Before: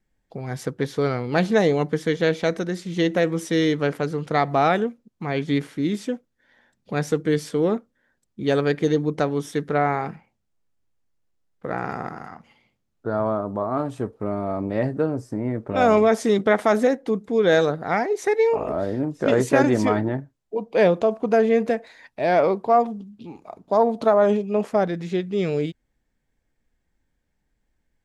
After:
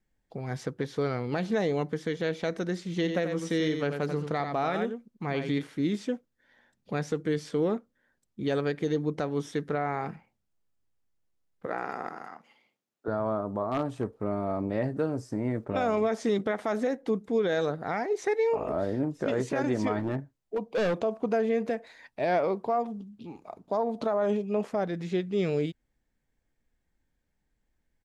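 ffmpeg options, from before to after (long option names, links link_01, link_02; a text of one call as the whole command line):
ffmpeg -i in.wav -filter_complex "[0:a]asplit=3[link_01][link_02][link_03];[link_01]afade=type=out:start_time=3.02:duration=0.02[link_04];[link_02]aecho=1:1:89:0.422,afade=type=in:start_time=3.02:duration=0.02,afade=type=out:start_time=5.61:duration=0.02[link_05];[link_03]afade=type=in:start_time=5.61:duration=0.02[link_06];[link_04][link_05][link_06]amix=inputs=3:normalize=0,asettb=1/sr,asplit=3[link_07][link_08][link_09];[link_07]atrim=end=11.664[link_10];[link_08]atrim=start=11.66:end=13.08,asetpts=PTS-STARTPTS,afade=type=in:duration=0.004:curve=qsin,afade=type=out:start_time=1.416:duration=0.004:curve=qsin,highpass=300[link_11];[link_09]atrim=start=13.076[link_12];[link_10][link_11]acrossfade=duration=0.004:curve1=hsin:curve2=qsin[link_13];[link_13][link_12]acrossfade=duration=0.004:curve1=qsin:curve2=hsin,asettb=1/sr,asplit=3[link_14][link_15][link_16];[link_14]atrim=end=13.684[link_17];[link_15]atrim=start=13.68:end=14.18,asetpts=PTS-STARTPTS,afade=type=in:duration=0.004:curve=qsin,afade=type=out:start_time=0.496:duration=0.004:curve=qsin,aeval=exprs='0.158*(abs(mod(val(0)/0.158+3,4)-2)-1)':channel_layout=same[link_18];[link_16]atrim=start=14.176[link_19];[link_17][link_18]acrossfade=duration=0.004:curve1=hsin:curve2=qsin[link_20];[link_20][link_19]acrossfade=duration=0.004:curve1=qsin:curve2=hsin,asettb=1/sr,asplit=3[link_21][link_22][link_23];[link_21]atrim=end=14.964[link_24];[link_22]atrim=start=14.96:end=15.65,asetpts=PTS-STARTPTS,afade=type=in:duration=0.004:curve=qsin,afade=type=out:start_time=0.686:duration=0.004:curve=qsin,highshelf=frequency=2700:gain=7.5[link_25];[link_23]atrim=start=15.646[link_26];[link_24][link_25]acrossfade=duration=0.004:curve1=hsin:curve2=qsin[link_27];[link_27][link_26]acrossfade=duration=0.004:curve1=qsin:curve2=hsin,asettb=1/sr,asplit=3[link_28][link_29][link_30];[link_28]atrim=end=19.994[link_31];[link_29]atrim=start=19.99:end=20.97,asetpts=PTS-STARTPTS,afade=type=in:duration=0.004:curve=qsin,afade=type=out:start_time=0.976:duration=0.004:curve=qsin,asoftclip=type=hard:threshold=-20dB[link_32];[link_30]atrim=start=20.966[link_33];[link_31][link_32]acrossfade=duration=0.004:curve1=hsin:curve2=qsin[link_34];[link_34][link_33]acrossfade=duration=0.004:curve1=qsin:curve2=hsin,alimiter=limit=-14dB:level=0:latency=1:release=201,acrossover=split=7500[link_35][link_36];[link_36]acompressor=threshold=-59dB:ratio=4:attack=1:release=60[link_37];[link_35][link_37]amix=inputs=2:normalize=0,volume=-4dB" out.wav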